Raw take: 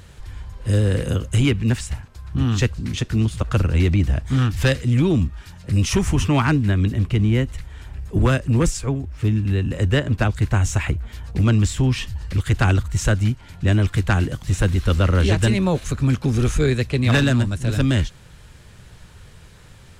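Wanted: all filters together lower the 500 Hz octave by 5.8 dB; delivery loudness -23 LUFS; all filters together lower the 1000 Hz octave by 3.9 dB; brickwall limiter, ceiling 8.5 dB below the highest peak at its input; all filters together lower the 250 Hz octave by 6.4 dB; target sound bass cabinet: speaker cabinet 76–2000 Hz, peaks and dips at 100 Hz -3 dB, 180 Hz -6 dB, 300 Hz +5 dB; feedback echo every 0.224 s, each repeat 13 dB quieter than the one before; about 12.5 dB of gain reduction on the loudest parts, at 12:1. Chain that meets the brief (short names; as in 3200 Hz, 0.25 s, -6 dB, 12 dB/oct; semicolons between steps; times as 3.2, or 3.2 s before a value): bell 250 Hz -8 dB; bell 500 Hz -4.5 dB; bell 1000 Hz -3.5 dB; compressor 12:1, threshold -28 dBFS; limiter -28 dBFS; speaker cabinet 76–2000 Hz, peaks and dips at 100 Hz -3 dB, 180 Hz -6 dB, 300 Hz +5 dB; feedback echo 0.224 s, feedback 22%, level -13 dB; gain +16 dB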